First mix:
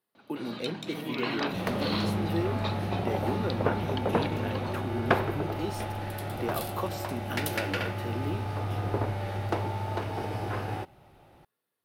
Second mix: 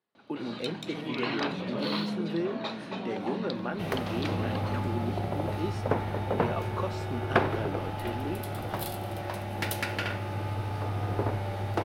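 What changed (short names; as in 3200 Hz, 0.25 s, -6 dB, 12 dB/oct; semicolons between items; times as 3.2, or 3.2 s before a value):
speech: add air absorption 79 m; second sound: entry +2.25 s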